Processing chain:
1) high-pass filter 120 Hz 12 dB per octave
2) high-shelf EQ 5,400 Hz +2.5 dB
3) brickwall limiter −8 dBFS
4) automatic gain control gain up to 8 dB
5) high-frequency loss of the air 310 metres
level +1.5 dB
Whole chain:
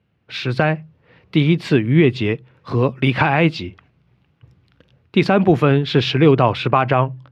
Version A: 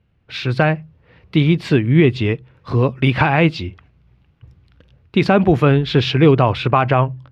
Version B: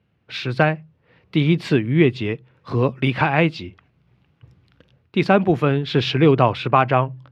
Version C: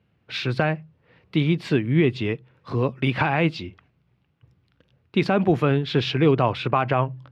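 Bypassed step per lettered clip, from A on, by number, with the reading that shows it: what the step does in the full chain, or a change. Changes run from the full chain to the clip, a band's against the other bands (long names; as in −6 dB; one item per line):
1, 125 Hz band +1.5 dB
3, change in crest factor +2.5 dB
4, change in momentary loudness spread −2 LU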